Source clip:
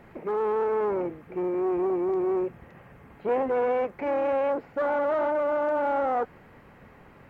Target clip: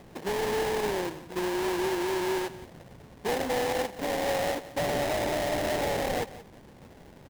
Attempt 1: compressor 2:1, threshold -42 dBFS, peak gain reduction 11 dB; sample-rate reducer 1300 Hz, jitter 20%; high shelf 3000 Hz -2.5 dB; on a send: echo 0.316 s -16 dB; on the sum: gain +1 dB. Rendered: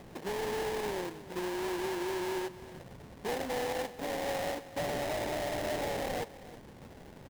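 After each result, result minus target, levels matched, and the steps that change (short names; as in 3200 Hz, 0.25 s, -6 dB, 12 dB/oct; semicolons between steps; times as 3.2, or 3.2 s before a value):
echo 0.14 s late; compressor: peak gain reduction +6 dB
change: echo 0.176 s -16 dB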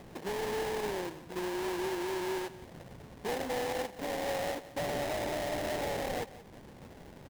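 compressor: peak gain reduction +6 dB
change: compressor 2:1, threshold -30.5 dBFS, peak gain reduction 5 dB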